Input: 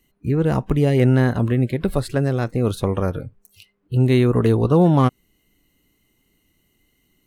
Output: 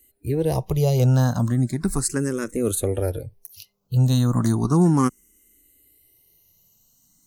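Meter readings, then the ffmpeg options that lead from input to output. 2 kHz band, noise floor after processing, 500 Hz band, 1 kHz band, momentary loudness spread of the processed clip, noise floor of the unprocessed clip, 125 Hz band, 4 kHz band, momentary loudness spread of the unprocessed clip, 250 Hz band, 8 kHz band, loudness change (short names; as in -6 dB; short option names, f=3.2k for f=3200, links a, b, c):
-6.5 dB, -63 dBFS, -5.0 dB, -3.5 dB, 8 LU, -66 dBFS, -1.5 dB, -0.5 dB, 8 LU, -3.0 dB, n/a, -2.5 dB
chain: -filter_complex "[0:a]highshelf=f=4.4k:t=q:w=1.5:g=13.5,asplit=2[a][b];[b]afreqshift=0.35[c];[a][c]amix=inputs=2:normalize=1"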